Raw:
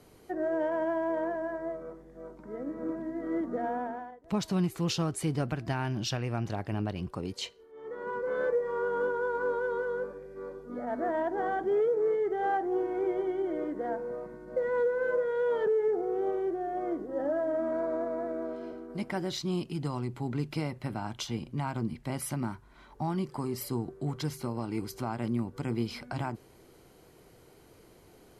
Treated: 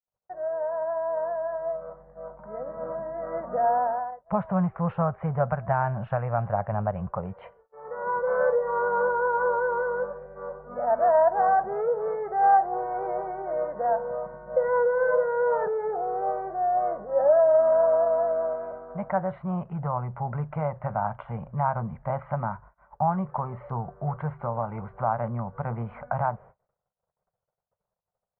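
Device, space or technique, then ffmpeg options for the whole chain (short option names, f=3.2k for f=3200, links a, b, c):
action camera in a waterproof case: -af "agate=range=-50dB:threshold=-52dB:ratio=16:detection=peak,lowpass=f=2.1k:w=0.5412,lowpass=f=2.1k:w=1.3066,lowpass=f=7.2k:w=0.5412,lowpass=f=7.2k:w=1.3066,firequalizer=gain_entry='entry(190,0);entry(290,-23);entry(560,9);entry(1300,5);entry(1900,-4);entry(4900,-30);entry(12000,-16)':delay=0.05:min_phase=1,dynaudnorm=f=750:g=5:m=11.5dB,volume=-7dB" -ar 32000 -c:a aac -b:a 64k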